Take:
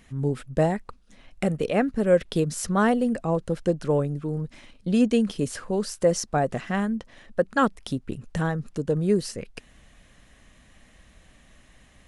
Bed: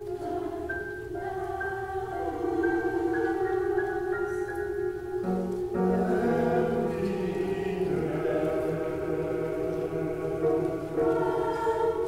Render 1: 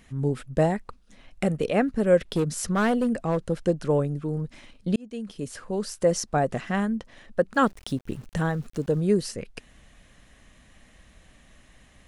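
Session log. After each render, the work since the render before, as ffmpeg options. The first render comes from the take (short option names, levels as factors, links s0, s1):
-filter_complex "[0:a]asettb=1/sr,asplit=3[s0][s1][s2];[s0]atrim=end=2.224[s3];[s1]atrim=start=2.22:end=3.46,asetpts=PTS-STARTPTS,afade=t=in:d=0.004:c=qsin,afade=t=out:st=1.236:d=0.004:c=qsin,asoftclip=type=hard:threshold=0.119[s4];[s2]atrim=start=3.456[s5];[s3][s4]acrossfade=d=0.004:c1=hsin:c2=qsin[s6];[s6][s5]acrossfade=d=0.004:c1=qsin:c2=hsin,asettb=1/sr,asplit=3[s7][s8][s9];[s7]atrim=end=7.544[s10];[s8]atrim=start=7.54:end=9.01,asetpts=PTS-STARTPTS,afade=t=in:d=0.004:c=qsin,afade=t=out:st=1.466:d=0.004:c=qsin,aeval=exprs='val(0)*gte(abs(val(0)),0.00447)':c=same[s11];[s9]atrim=start=9.006[s12];[s10][s11]acrossfade=d=0.004:c1=hsin:c2=qsin[s13];[s13][s12]acrossfade=d=0.004:c1=qsin:c2=hsin,asplit=2[s14][s15];[s14]atrim=end=4.96,asetpts=PTS-STARTPTS,afade=t=out:st=4.956:d=0.004:c=hsin[s16];[s15]atrim=start=4.96,asetpts=PTS-STARTPTS,afade=t=in:d=1.54:c=qsin[s17];[s16][s17]concat=n=2:v=0:a=1"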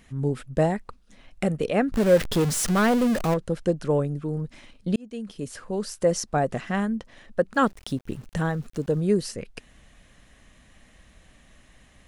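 -filter_complex "[0:a]asettb=1/sr,asplit=3[s0][s1][s2];[s0]atrim=end=1.924[s3];[s1]atrim=start=1.92:end=3.34,asetpts=PTS-STARTPTS,afade=t=in:d=0.004:c=qsin,afade=t=out:st=1.416:d=0.004:c=qsin,aeval=exprs='val(0)+0.5*0.0562*sgn(val(0))':c=same[s4];[s2]atrim=start=3.336[s5];[s3][s4]acrossfade=d=0.004:c1=hsin:c2=qsin[s6];[s6][s5]acrossfade=d=0.004:c1=qsin:c2=hsin"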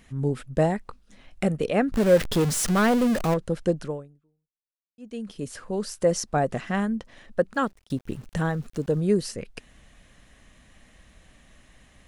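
-filter_complex "[0:a]asettb=1/sr,asplit=3[s0][s1][s2];[s0]atrim=end=0.874[s3];[s1]atrim=start=0.87:end=1.48,asetpts=PTS-STARTPTS,afade=t=in:d=0.004:c=qsin,afade=t=out:st=0.606:d=0.004:c=qsin,asplit=2[s4][s5];[s5]adelay=20,volume=0.237[s6];[s4][s6]amix=inputs=2:normalize=0,atrim=end_sample=26901[s7];[s2]atrim=start=1.476[s8];[s3][s7]acrossfade=d=0.004:c1=hsin:c2=qsin[s9];[s9][s8]acrossfade=d=0.004:c1=qsin:c2=hsin,asplit=3[s10][s11][s12];[s10]atrim=end=4.98,asetpts=PTS-STARTPTS,afade=t=out:st=3.82:d=1.16:c=exp[s13];[s11]atrim=start=4.98:end=7.9,asetpts=PTS-STARTPTS,afade=t=in:d=0.004:c=hsin,afade=t=out:st=2.46:d=0.46[s14];[s12]atrim=start=7.9,asetpts=PTS-STARTPTS,afade=t=in:d=0.004:c=hsin[s15];[s13][s14][s15]concat=n=3:v=0:a=1"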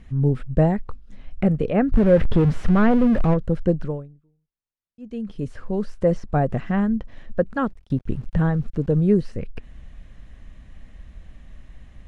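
-filter_complex "[0:a]aemphasis=mode=reproduction:type=bsi,acrossover=split=3100[s0][s1];[s1]acompressor=threshold=0.00158:ratio=4:attack=1:release=60[s2];[s0][s2]amix=inputs=2:normalize=0"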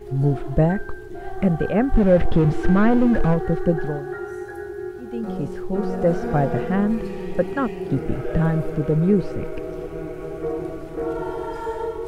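-filter_complex "[1:a]volume=0.891[s0];[0:a][s0]amix=inputs=2:normalize=0"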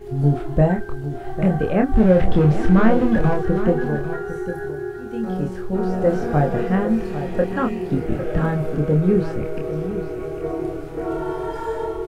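-filter_complex "[0:a]asplit=2[s0][s1];[s1]adelay=27,volume=0.631[s2];[s0][s2]amix=inputs=2:normalize=0,aecho=1:1:802:0.282"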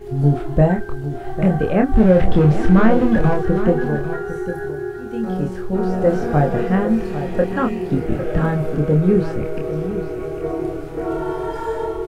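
-af "volume=1.26,alimiter=limit=0.794:level=0:latency=1"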